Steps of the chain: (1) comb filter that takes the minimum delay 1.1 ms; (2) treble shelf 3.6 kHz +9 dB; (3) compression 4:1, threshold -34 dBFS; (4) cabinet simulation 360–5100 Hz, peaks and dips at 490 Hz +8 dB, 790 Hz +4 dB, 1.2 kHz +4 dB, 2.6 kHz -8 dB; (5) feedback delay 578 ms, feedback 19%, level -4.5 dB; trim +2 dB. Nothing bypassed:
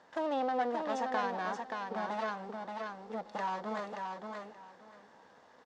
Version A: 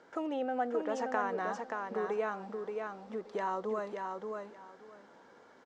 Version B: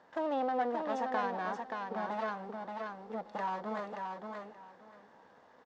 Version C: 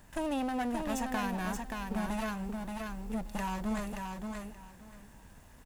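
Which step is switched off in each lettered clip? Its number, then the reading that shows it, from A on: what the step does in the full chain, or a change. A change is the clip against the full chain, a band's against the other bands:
1, 4 kHz band -6.5 dB; 2, 4 kHz band -4.0 dB; 4, momentary loudness spread change +6 LU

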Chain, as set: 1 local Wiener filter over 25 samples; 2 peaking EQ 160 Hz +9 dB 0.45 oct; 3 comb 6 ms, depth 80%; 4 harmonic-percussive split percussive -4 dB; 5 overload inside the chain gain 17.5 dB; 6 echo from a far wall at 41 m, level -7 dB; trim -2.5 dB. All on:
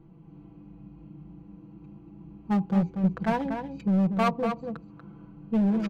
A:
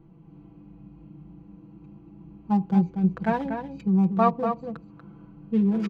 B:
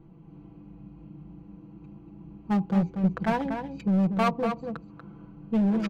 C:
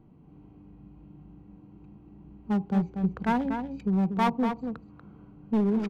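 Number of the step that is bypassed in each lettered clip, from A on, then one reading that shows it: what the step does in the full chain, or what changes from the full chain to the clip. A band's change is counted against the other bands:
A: 5, distortion -12 dB; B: 4, momentary loudness spread change +6 LU; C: 3, 125 Hz band -2.0 dB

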